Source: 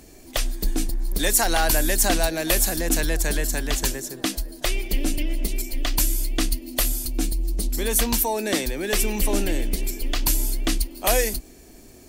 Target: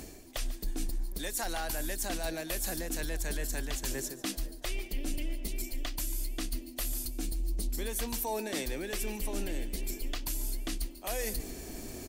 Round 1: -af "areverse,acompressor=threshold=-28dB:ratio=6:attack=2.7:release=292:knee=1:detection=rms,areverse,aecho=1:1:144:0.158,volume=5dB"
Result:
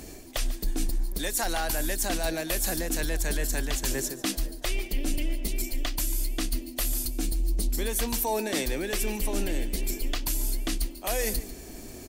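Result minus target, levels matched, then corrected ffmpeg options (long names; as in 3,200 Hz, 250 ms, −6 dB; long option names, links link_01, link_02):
downward compressor: peak gain reduction −6 dB
-af "areverse,acompressor=threshold=-35.5dB:ratio=6:attack=2.7:release=292:knee=1:detection=rms,areverse,aecho=1:1:144:0.158,volume=5dB"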